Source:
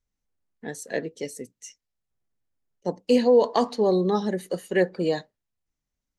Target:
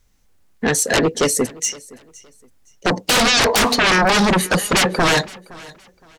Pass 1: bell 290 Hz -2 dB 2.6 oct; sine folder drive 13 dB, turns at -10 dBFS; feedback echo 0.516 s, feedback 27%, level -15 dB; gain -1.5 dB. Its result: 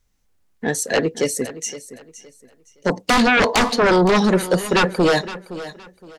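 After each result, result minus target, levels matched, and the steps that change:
sine folder: distortion -15 dB; echo-to-direct +7 dB
change: sine folder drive 20 dB, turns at -10 dBFS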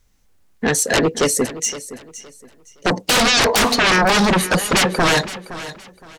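echo-to-direct +7 dB
change: feedback echo 0.516 s, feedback 27%, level -22 dB

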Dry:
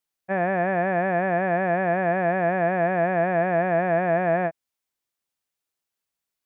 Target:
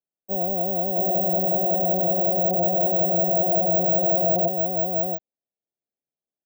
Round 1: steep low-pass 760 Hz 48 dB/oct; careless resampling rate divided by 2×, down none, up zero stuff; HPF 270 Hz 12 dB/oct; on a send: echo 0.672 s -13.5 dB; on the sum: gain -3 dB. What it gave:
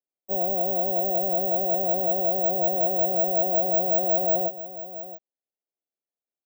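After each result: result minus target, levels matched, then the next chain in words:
echo-to-direct -12 dB; 125 Hz band -7.5 dB
steep low-pass 760 Hz 48 dB/oct; careless resampling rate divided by 2×, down none, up zero stuff; HPF 270 Hz 12 dB/oct; on a send: echo 0.672 s -1.5 dB; on the sum: gain -3 dB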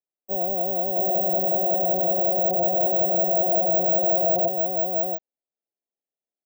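125 Hz band -7.0 dB
steep low-pass 760 Hz 48 dB/oct; careless resampling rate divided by 2×, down none, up zero stuff; HPF 130 Hz 12 dB/oct; on a send: echo 0.672 s -1.5 dB; on the sum: gain -3 dB

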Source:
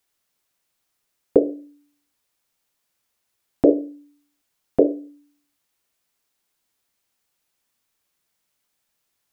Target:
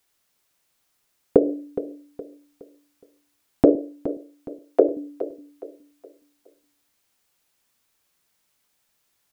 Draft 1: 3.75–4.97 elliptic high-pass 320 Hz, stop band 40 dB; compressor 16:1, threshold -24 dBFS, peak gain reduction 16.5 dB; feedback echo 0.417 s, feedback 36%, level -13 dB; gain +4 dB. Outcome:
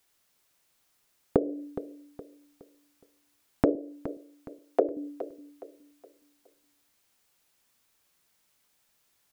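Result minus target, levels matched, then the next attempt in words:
compressor: peak gain reduction +10 dB
3.75–4.97 elliptic high-pass 320 Hz, stop band 40 dB; compressor 16:1, threshold -13.5 dBFS, peak gain reduction 6.5 dB; feedback echo 0.417 s, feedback 36%, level -13 dB; gain +4 dB

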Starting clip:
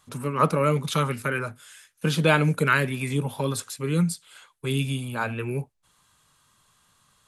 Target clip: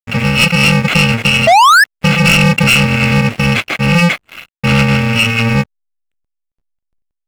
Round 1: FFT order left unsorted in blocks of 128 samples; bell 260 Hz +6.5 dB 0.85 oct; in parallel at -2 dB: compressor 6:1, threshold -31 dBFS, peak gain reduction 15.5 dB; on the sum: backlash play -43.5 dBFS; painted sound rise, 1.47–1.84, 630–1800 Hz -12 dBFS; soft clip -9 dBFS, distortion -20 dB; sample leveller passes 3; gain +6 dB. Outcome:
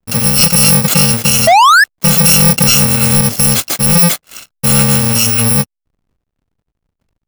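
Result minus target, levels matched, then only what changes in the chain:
2000 Hz band -6.5 dB
add after FFT order left unsorted: synth low-pass 2400 Hz, resonance Q 3.7

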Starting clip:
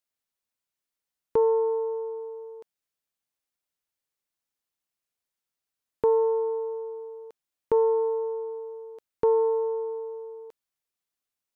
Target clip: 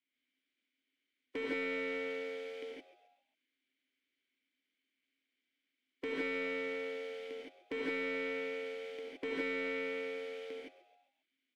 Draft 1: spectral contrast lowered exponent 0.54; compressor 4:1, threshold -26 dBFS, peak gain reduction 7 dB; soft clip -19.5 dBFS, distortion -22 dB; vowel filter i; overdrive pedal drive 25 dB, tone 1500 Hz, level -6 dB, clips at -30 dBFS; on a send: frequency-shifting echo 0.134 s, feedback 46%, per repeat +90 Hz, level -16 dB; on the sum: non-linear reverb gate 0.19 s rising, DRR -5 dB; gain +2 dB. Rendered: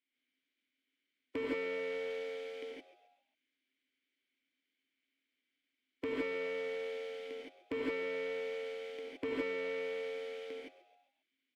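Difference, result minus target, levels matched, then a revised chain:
soft clip: distortion -9 dB
spectral contrast lowered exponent 0.54; compressor 4:1, threshold -26 dBFS, peak gain reduction 7 dB; soft clip -27.5 dBFS, distortion -14 dB; vowel filter i; overdrive pedal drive 25 dB, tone 1500 Hz, level -6 dB, clips at -30 dBFS; on a send: frequency-shifting echo 0.134 s, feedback 46%, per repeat +90 Hz, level -16 dB; on the sum: non-linear reverb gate 0.19 s rising, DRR -5 dB; gain +2 dB

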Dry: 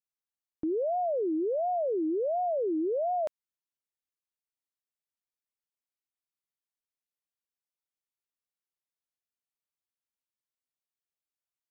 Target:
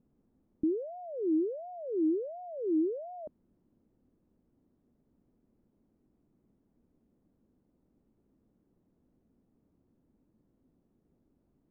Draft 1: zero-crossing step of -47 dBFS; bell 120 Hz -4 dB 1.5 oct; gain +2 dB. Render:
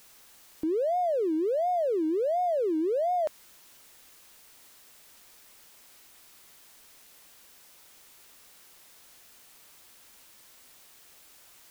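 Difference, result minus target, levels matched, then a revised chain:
250 Hz band -5.0 dB
zero-crossing step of -47 dBFS; synth low-pass 250 Hz, resonance Q 1.8; bell 120 Hz -4 dB 1.5 oct; gain +2 dB

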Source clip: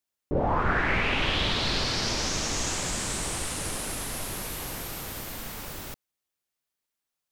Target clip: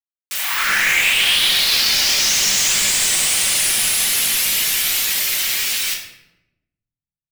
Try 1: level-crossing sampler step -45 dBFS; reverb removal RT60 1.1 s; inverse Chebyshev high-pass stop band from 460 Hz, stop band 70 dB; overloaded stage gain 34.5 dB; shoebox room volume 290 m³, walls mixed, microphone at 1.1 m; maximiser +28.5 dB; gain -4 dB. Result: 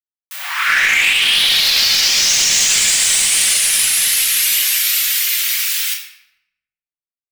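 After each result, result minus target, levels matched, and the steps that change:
level-crossing sampler: distortion -10 dB; overloaded stage: distortion -5 dB
change: level-crossing sampler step -37.5 dBFS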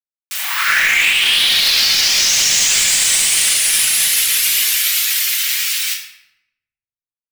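overloaded stage: distortion -5 dB
change: overloaded stage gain 42 dB

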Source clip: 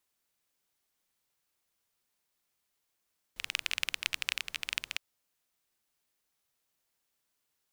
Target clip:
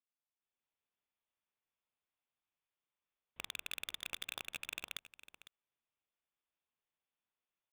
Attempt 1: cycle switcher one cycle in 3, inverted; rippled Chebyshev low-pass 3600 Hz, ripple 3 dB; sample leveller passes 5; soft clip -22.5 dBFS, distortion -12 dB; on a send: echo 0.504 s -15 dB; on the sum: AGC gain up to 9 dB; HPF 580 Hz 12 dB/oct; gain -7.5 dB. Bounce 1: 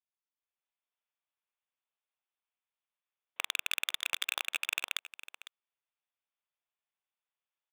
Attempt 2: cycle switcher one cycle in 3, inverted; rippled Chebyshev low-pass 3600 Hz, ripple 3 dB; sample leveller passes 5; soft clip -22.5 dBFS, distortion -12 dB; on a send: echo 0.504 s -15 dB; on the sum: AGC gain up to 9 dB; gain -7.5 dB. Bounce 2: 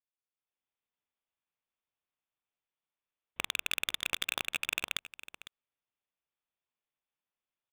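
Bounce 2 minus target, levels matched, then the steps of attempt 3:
soft clip: distortion -6 dB
cycle switcher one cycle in 3, inverted; rippled Chebyshev low-pass 3600 Hz, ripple 3 dB; sample leveller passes 5; soft clip -34 dBFS, distortion -6 dB; on a send: echo 0.504 s -15 dB; on the sum: AGC gain up to 9 dB; gain -7.5 dB

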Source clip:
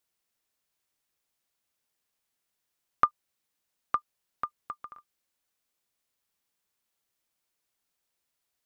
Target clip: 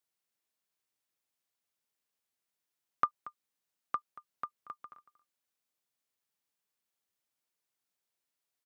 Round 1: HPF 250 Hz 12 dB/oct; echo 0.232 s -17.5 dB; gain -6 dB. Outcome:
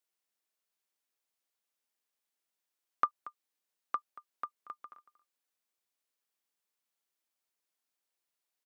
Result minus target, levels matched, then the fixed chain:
125 Hz band -9.5 dB
HPF 93 Hz 12 dB/oct; echo 0.232 s -17.5 dB; gain -6 dB

